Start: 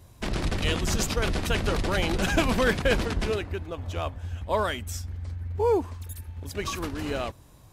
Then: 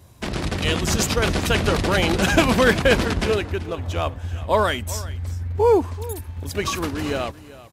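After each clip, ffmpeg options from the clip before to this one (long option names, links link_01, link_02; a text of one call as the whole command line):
ffmpeg -i in.wav -af "dynaudnorm=framelen=140:gausssize=11:maxgain=3.5dB,highpass=59,aecho=1:1:384:0.126,volume=3.5dB" out.wav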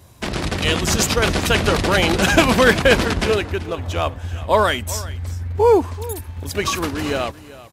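ffmpeg -i in.wav -af "lowshelf=frequency=390:gain=-3,volume=4dB" out.wav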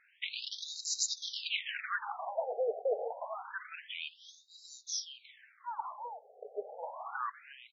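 ffmpeg -i in.wav -af "areverse,acompressor=threshold=-22dB:ratio=8,areverse,afftfilt=real='re*between(b*sr/1024,550*pow(5400/550,0.5+0.5*sin(2*PI*0.27*pts/sr))/1.41,550*pow(5400/550,0.5+0.5*sin(2*PI*0.27*pts/sr))*1.41)':imag='im*between(b*sr/1024,550*pow(5400/550,0.5+0.5*sin(2*PI*0.27*pts/sr))/1.41,550*pow(5400/550,0.5+0.5*sin(2*PI*0.27*pts/sr))*1.41)':win_size=1024:overlap=0.75,volume=-3dB" out.wav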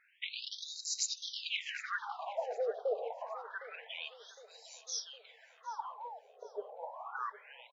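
ffmpeg -i in.wav -filter_complex "[0:a]asplit=2[link_01][link_02];[link_02]adelay=760,lowpass=frequency=4700:poles=1,volume=-18dB,asplit=2[link_03][link_04];[link_04]adelay=760,lowpass=frequency=4700:poles=1,volume=0.53,asplit=2[link_05][link_06];[link_06]adelay=760,lowpass=frequency=4700:poles=1,volume=0.53,asplit=2[link_07][link_08];[link_08]adelay=760,lowpass=frequency=4700:poles=1,volume=0.53[link_09];[link_01][link_03][link_05][link_07][link_09]amix=inputs=5:normalize=0,volume=-2dB" out.wav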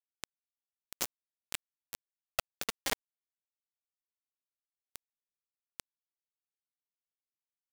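ffmpeg -i in.wav -filter_complex "[0:a]asplit=2[link_01][link_02];[link_02]acrusher=samples=26:mix=1:aa=0.000001:lfo=1:lforange=15.6:lforate=1.5,volume=-5dB[link_03];[link_01][link_03]amix=inputs=2:normalize=0,highpass=350,acrusher=bits=3:mix=0:aa=0.000001,volume=1.5dB" out.wav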